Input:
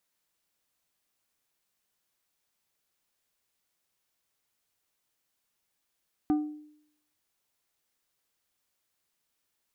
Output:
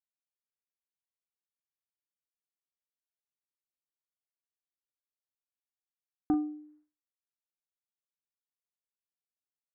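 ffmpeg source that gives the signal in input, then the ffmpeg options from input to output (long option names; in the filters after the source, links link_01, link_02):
-f lavfi -i "aevalsrc='0.1*pow(10,-3*t/0.7)*sin(2*PI*301*t)+0.0282*pow(10,-3*t/0.369)*sin(2*PI*752.5*t)+0.00794*pow(10,-3*t/0.265)*sin(2*PI*1204*t)+0.00224*pow(10,-3*t/0.227)*sin(2*PI*1505*t)+0.000631*pow(10,-3*t/0.189)*sin(2*PI*1956.5*t)':duration=0.89:sample_rate=44100"
-filter_complex "[0:a]agate=range=-33dB:threshold=-58dB:ratio=3:detection=peak,lowpass=frequency=1600:width=0.5412,lowpass=frequency=1600:width=1.3066,asplit=2[link_01][link_02];[link_02]adelay=39,volume=-10dB[link_03];[link_01][link_03]amix=inputs=2:normalize=0"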